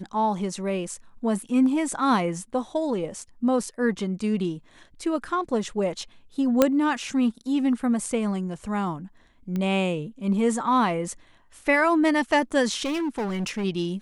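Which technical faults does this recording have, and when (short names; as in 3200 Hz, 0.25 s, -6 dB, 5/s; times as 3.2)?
6.62 pop -4 dBFS
9.56 pop -18 dBFS
12.84–13.65 clipped -24 dBFS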